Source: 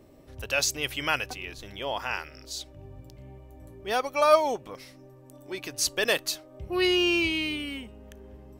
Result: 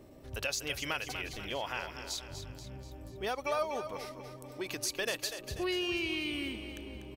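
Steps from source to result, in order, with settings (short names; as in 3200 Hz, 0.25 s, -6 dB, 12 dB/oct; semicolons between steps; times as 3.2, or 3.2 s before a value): compressor 3:1, threshold -34 dBFS, peak gain reduction 15.5 dB; tempo 1.2×; on a send: split-band echo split 340 Hz, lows 0.406 s, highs 0.244 s, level -9.5 dB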